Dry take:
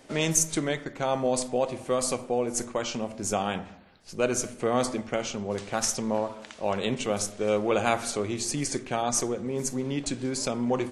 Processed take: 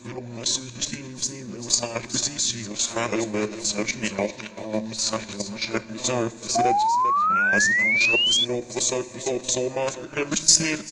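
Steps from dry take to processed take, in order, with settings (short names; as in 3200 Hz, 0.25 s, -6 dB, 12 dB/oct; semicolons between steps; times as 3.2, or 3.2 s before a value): whole clip reversed; AGC gain up to 3.5 dB; high shelf 2300 Hz +11 dB; on a send: echo 0.395 s -13 dB; on the sum: level quantiser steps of 11 dB; ripple EQ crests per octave 1.3, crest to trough 10 dB; FDN reverb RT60 0.88 s, high-frequency decay 1×, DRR 13.5 dB; formant shift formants -4 st; painted sound rise, 6.55–8.45, 680–3500 Hz -18 dBFS; gain -2.5 dB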